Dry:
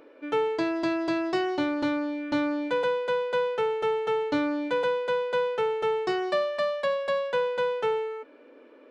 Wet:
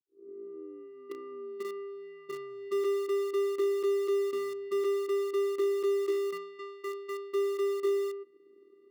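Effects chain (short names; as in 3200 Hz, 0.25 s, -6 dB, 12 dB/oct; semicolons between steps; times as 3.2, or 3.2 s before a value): tape start at the beginning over 2.72 s; vocoder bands 8, square 398 Hz; resonant low shelf 360 Hz +6 dB, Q 3; in parallel at -11.5 dB: bit-crush 5-bit; on the sum: gain -4 dB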